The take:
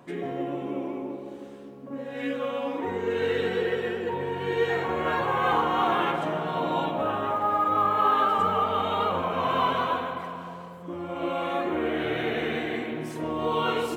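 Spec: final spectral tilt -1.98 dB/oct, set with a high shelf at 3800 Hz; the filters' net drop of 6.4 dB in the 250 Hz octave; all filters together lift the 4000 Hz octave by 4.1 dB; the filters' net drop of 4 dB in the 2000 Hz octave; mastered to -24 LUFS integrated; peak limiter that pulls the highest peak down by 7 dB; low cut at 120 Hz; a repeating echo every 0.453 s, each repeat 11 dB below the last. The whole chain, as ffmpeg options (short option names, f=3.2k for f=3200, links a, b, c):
-af "highpass=120,equalizer=f=250:t=o:g=-9,equalizer=f=2k:t=o:g=-8,highshelf=f=3.8k:g=4.5,equalizer=f=4k:t=o:g=7,alimiter=limit=-19.5dB:level=0:latency=1,aecho=1:1:453|906|1359:0.282|0.0789|0.0221,volume=6dB"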